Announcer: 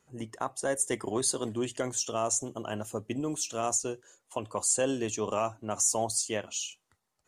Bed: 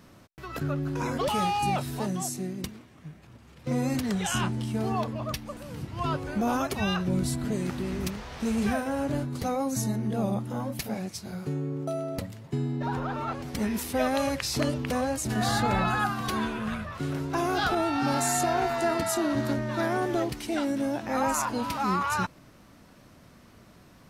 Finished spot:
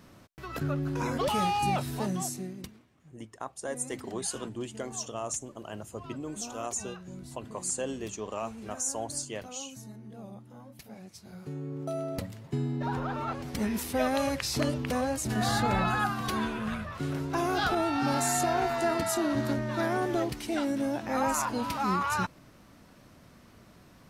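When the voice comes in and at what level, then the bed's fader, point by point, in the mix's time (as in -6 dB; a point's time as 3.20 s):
3.00 s, -5.5 dB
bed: 2.22 s -1 dB
3.20 s -17 dB
10.71 s -17 dB
12.01 s -1.5 dB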